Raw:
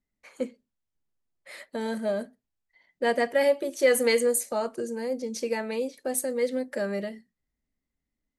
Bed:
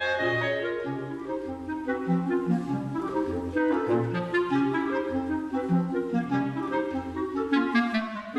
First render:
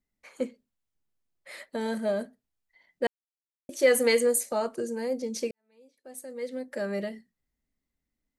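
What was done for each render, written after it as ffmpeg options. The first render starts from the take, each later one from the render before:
-filter_complex "[0:a]asplit=4[s0][s1][s2][s3];[s0]atrim=end=3.07,asetpts=PTS-STARTPTS,afade=t=out:st=3.066:d=0.004:c=hsin[s4];[s1]atrim=start=3.07:end=3.69,asetpts=PTS-STARTPTS,volume=0[s5];[s2]atrim=start=3.69:end=5.51,asetpts=PTS-STARTPTS,afade=t=in:d=0.004:c=hsin,afade=t=out:st=1.816:d=0.004:c=hsin[s6];[s3]atrim=start=5.51,asetpts=PTS-STARTPTS,afade=t=in:d=1.51:c=qua[s7];[s4][s5][s6][s7]concat=n=4:v=0:a=1"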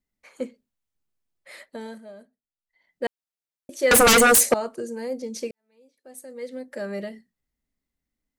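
-filter_complex "[0:a]asettb=1/sr,asplit=3[s0][s1][s2];[s0]atrim=end=3.914[s3];[s1]atrim=start=3.91:end=4.54,asetpts=PTS-STARTPTS,afade=t=in:d=0.004:c=qsin,afade=t=out:st=0.626:d=0.004:c=qsin,aeval=exprs='0.266*sin(PI/2*5.01*val(0)/0.266)':c=same[s4];[s2]atrim=start=4.536[s5];[s3][s4]acrossfade=d=0.004:c1=hsin:c2=qsin[s6];[s6][s5]acrossfade=d=0.004:c1=qsin:c2=hsin,asplit=3[s7][s8][s9];[s7]atrim=end=2.05,asetpts=PTS-STARTPTS,afade=t=out:st=1.56:d=0.49:silence=0.16788[s10];[s8]atrim=start=2.05:end=2.57,asetpts=PTS-STARTPTS,volume=0.168[s11];[s9]atrim=start=2.57,asetpts=PTS-STARTPTS,afade=t=in:d=0.49:silence=0.16788[s12];[s10][s11][s12]concat=n=3:v=0:a=1"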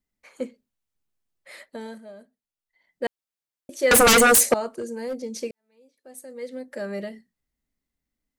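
-filter_complex "[0:a]asettb=1/sr,asplit=3[s0][s1][s2];[s0]atrim=end=4.724[s3];[s1]atrim=start=4.72:end=5.16,asetpts=PTS-STARTPTS,afade=t=in:d=0.004:c=qsin,afade=t=out:st=0.436:d=0.004:c=qsin,asoftclip=type=hard:threshold=0.0562[s4];[s2]atrim=start=5.156[s5];[s3][s4]acrossfade=d=0.004:c1=hsin:c2=qsin[s6];[s6][s5]acrossfade=d=0.004:c1=qsin:c2=hsin"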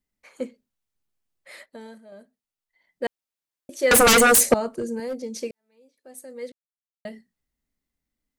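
-filter_complex "[0:a]asettb=1/sr,asplit=3[s0][s1][s2];[s0]atrim=end=4.384[s3];[s1]atrim=start=4.38:end=5,asetpts=PTS-STARTPTS,afade=t=in:d=0.004:c=qsin,afade=t=out:st=0.616:d=0.004:c=qsin,lowshelf=f=210:g=12[s4];[s2]atrim=start=4.996[s5];[s3][s4]acrossfade=d=0.004:c1=hsin:c2=qsin[s6];[s6][s5]acrossfade=d=0.004:c1=qsin:c2=hsin,asplit=5[s7][s8][s9][s10][s11];[s7]atrim=end=1.662[s12];[s8]atrim=start=1.658:end=2.122,asetpts=PTS-STARTPTS,volume=0.562[s13];[s9]atrim=start=2.118:end=6.52,asetpts=PTS-STARTPTS,afade=t=out:st=4.398:d=0.004:c=hsin[s14];[s10]atrim=start=6.52:end=7.05,asetpts=PTS-STARTPTS,volume=0[s15];[s11]atrim=start=7.05,asetpts=PTS-STARTPTS,afade=t=in:d=0.004:c=hsin[s16];[s12][s13]acrossfade=d=0.004:c1=hsin:c2=hsin[s17];[s14][s15][s16]concat=n=3:v=0:a=1[s18];[s17][s18]acrossfade=d=0.004:c1=hsin:c2=hsin"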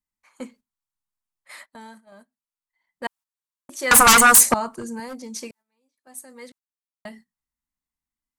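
-af "agate=range=0.316:threshold=0.00447:ratio=16:detection=peak,equalizer=f=500:t=o:w=1:g=-11,equalizer=f=1000:t=o:w=1:g=11,equalizer=f=8000:t=o:w=1:g=4,equalizer=f=16000:t=o:w=1:g=4"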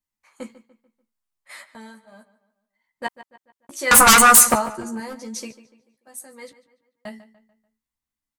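-filter_complex "[0:a]asplit=2[s0][s1];[s1]adelay=14,volume=0.562[s2];[s0][s2]amix=inputs=2:normalize=0,asplit=2[s3][s4];[s4]adelay=146,lowpass=f=3800:p=1,volume=0.178,asplit=2[s5][s6];[s6]adelay=146,lowpass=f=3800:p=1,volume=0.43,asplit=2[s7][s8];[s8]adelay=146,lowpass=f=3800:p=1,volume=0.43,asplit=2[s9][s10];[s10]adelay=146,lowpass=f=3800:p=1,volume=0.43[s11];[s3][s5][s7][s9][s11]amix=inputs=5:normalize=0"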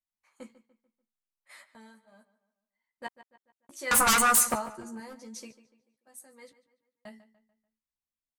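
-af "volume=0.282"

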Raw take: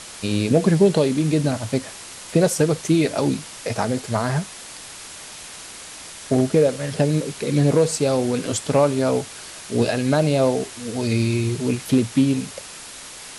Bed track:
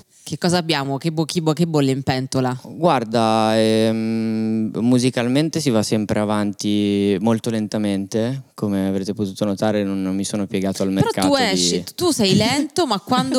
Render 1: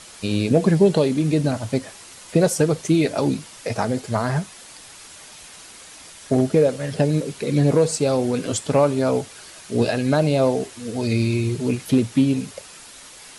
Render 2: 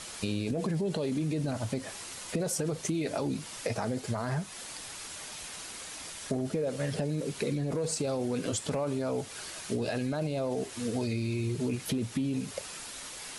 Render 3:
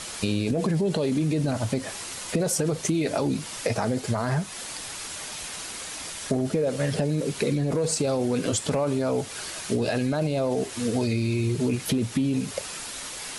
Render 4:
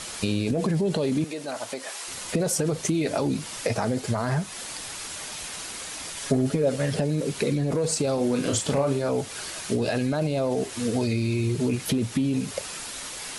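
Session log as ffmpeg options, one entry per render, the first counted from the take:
-af "afftdn=nr=6:nf=-38"
-af "alimiter=limit=0.168:level=0:latency=1:release=23,acompressor=threshold=0.0355:ratio=4"
-af "volume=2.11"
-filter_complex "[0:a]asettb=1/sr,asplit=3[s0][s1][s2];[s0]atrim=end=1.244[s3];[s1]atrim=start=1.24:end=2.08,asetpts=PTS-STARTPTS,afade=t=in:d=0.004:c=qsin,afade=t=out:st=0.836:d=0.004:c=qsin,highpass=510[s4];[s2]atrim=start=2.076[s5];[s3][s4]acrossfade=d=0.004:c1=hsin:c2=qsin[s6];[s6][s5]acrossfade=d=0.004:c1=qsin:c2=hsin,asettb=1/sr,asplit=3[s7][s8][s9];[s7]atrim=end=6.164[s10];[s8]atrim=start=6.16:end=6.76,asetpts=PTS-STARTPTS,afade=t=in:d=0.004:c=qsin,afade=t=out:st=0.596:d=0.004:c=qsin,aecho=1:1:7.2:0.59,atrim=end_sample=26460[s11];[s9]atrim=start=6.756[s12];[s10][s11]acrossfade=d=0.004:c1=hsin:c2=qsin[s13];[s13][s12]acrossfade=d=0.004:c1=qsin:c2=hsin,asettb=1/sr,asplit=3[s14][s15][s16];[s14]atrim=end=8.144[s17];[s15]atrim=start=8.14:end=9.09,asetpts=PTS-STARTPTS,afade=t=in:d=0.004:c=qsin,afade=t=out:st=0.946:d=0.004:c=qsin,asplit=2[s18][s19];[s19]adelay=36,volume=0.531[s20];[s18][s20]amix=inputs=2:normalize=0,atrim=end_sample=41895[s21];[s16]atrim=start=9.086[s22];[s17][s21]acrossfade=d=0.004:c1=hsin:c2=qsin[s23];[s23][s22]acrossfade=d=0.004:c1=qsin:c2=hsin"

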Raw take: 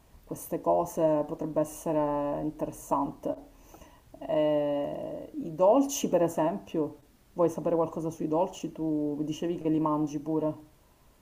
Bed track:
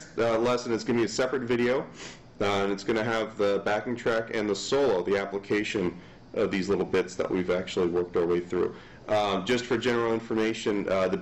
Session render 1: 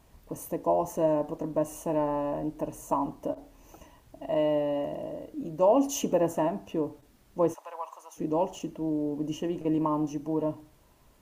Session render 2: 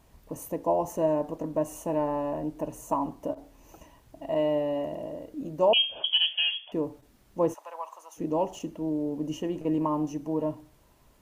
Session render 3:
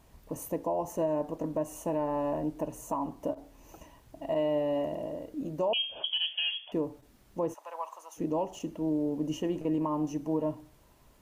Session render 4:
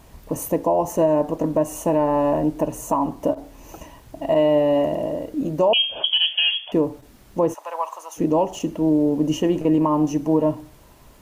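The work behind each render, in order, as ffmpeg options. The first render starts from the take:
-filter_complex "[0:a]asplit=3[s0][s1][s2];[s0]afade=t=out:st=7.53:d=0.02[s3];[s1]highpass=f=890:w=0.5412,highpass=f=890:w=1.3066,afade=t=in:st=7.53:d=0.02,afade=t=out:st=8.16:d=0.02[s4];[s2]afade=t=in:st=8.16:d=0.02[s5];[s3][s4][s5]amix=inputs=3:normalize=0"
-filter_complex "[0:a]asettb=1/sr,asplit=3[s0][s1][s2];[s0]atrim=end=5.734[s3];[s1]atrim=start=5.73:end=6.72,asetpts=PTS-STARTPTS,afade=t=in:d=0.004:c=qsin,afade=t=out:st=0.986:d=0.004:c=qsin,lowpass=f=3000:t=q:w=0.5098,lowpass=f=3000:t=q:w=0.6013,lowpass=f=3000:t=q:w=0.9,lowpass=f=3000:t=q:w=2.563,afreqshift=-3500[s4];[s2]atrim=start=6.716[s5];[s3][s4]acrossfade=d=0.004:c1=hsin:c2=qsin[s6];[s6][s5]acrossfade=d=0.004:c1=qsin:c2=hsin"
-af "alimiter=limit=0.0891:level=0:latency=1:release=296"
-af "volume=3.76"

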